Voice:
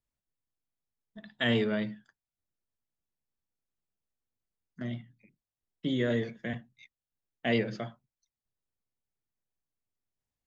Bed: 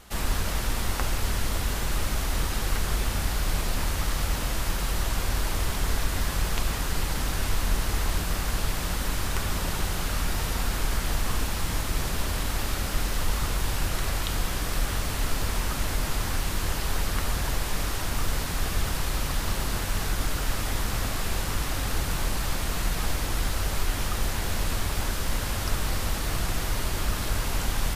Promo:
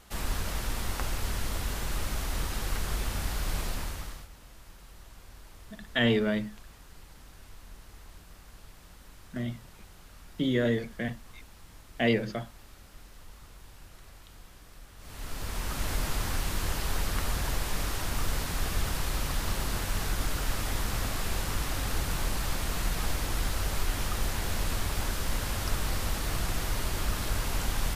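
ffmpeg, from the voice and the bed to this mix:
-filter_complex "[0:a]adelay=4550,volume=2.5dB[a];[1:a]volume=15.5dB,afade=t=out:st=3.64:d=0.64:silence=0.11885,afade=t=in:st=14.97:d=0.96:silence=0.0944061[b];[a][b]amix=inputs=2:normalize=0"

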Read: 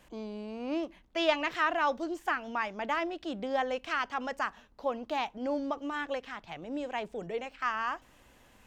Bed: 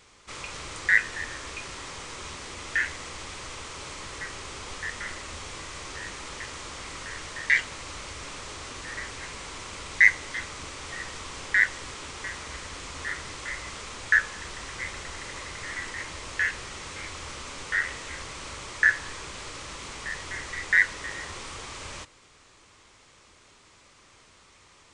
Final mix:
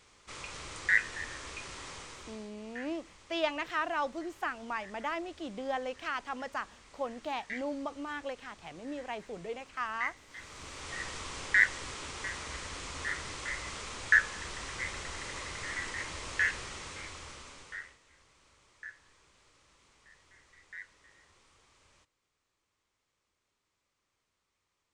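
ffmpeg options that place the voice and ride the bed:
-filter_complex "[0:a]adelay=2150,volume=-4dB[a];[1:a]volume=11dB,afade=t=out:st=1.92:d=0.59:silence=0.211349,afade=t=in:st=10.28:d=0.73:silence=0.149624,afade=t=out:st=16.52:d=1.46:silence=0.0668344[b];[a][b]amix=inputs=2:normalize=0"

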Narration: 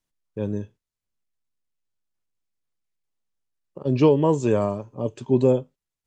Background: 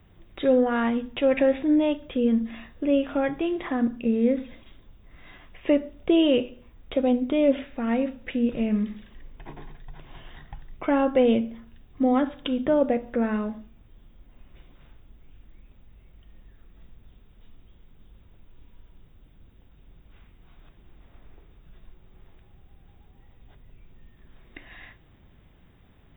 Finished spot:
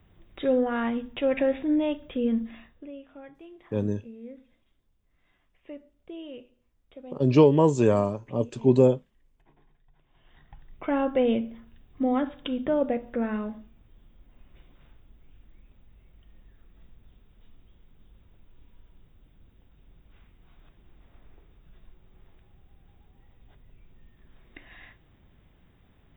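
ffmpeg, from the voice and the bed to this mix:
-filter_complex "[0:a]adelay=3350,volume=0dB[a];[1:a]volume=14dB,afade=t=out:st=2.37:d=0.55:silence=0.133352,afade=t=in:st=10.14:d=0.82:silence=0.133352[b];[a][b]amix=inputs=2:normalize=0"

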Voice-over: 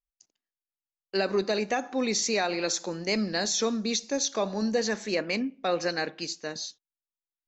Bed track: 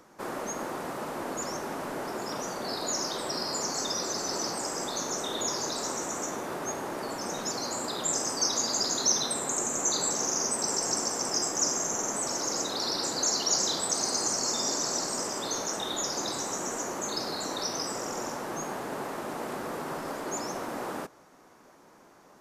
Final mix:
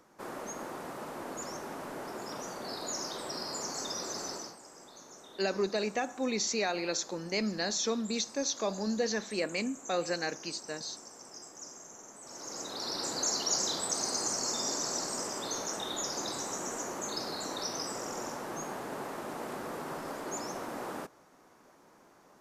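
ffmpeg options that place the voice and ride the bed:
-filter_complex "[0:a]adelay=4250,volume=-4.5dB[a];[1:a]volume=9.5dB,afade=t=out:st=4.25:d=0.32:silence=0.211349,afade=t=in:st=12.21:d=0.91:silence=0.16788[b];[a][b]amix=inputs=2:normalize=0"

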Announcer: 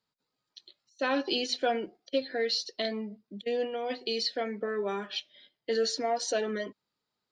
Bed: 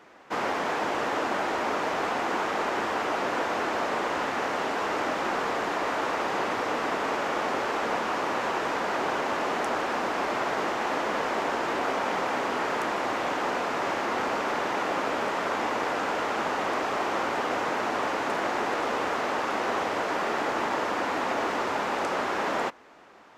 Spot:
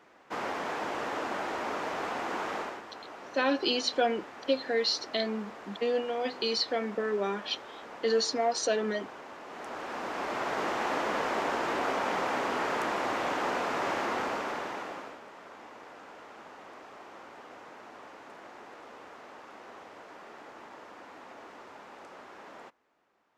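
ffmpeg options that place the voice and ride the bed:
-filter_complex "[0:a]adelay=2350,volume=1.5dB[a];[1:a]volume=9dB,afade=t=out:st=2.55:d=0.27:silence=0.266073,afade=t=in:st=9.46:d=1.31:silence=0.177828,afade=t=out:st=14.02:d=1.18:silence=0.125893[b];[a][b]amix=inputs=2:normalize=0"

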